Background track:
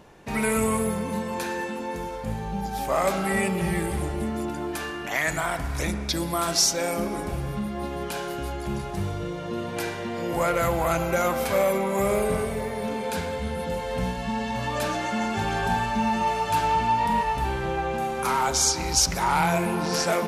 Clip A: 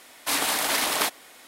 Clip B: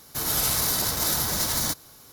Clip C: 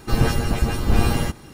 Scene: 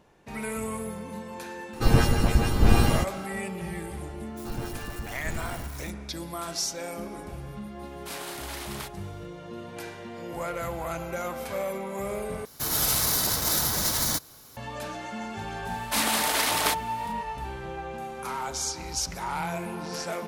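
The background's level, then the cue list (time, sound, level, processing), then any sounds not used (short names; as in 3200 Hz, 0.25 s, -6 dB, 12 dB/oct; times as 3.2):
background track -9 dB
1.73 add C -1 dB
4.37 add C -16.5 dB + switching spikes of -21 dBFS
7.79 add A -14.5 dB
12.45 replace with B -0.5 dB
15.65 add A -1 dB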